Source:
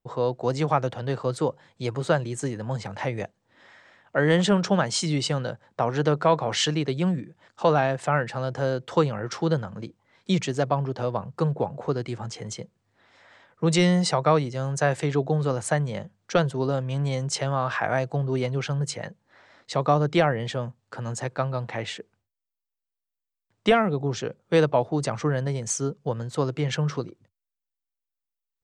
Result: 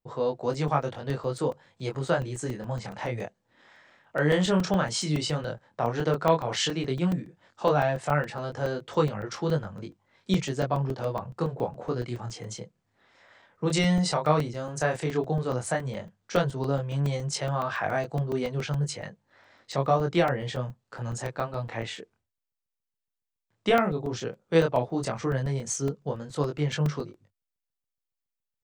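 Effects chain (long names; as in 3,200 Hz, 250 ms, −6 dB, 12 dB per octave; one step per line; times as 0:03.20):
chorus effect 0.11 Hz, delay 20 ms, depth 6.8 ms
regular buffer underruns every 0.14 s, samples 128, zero, from 0:00.54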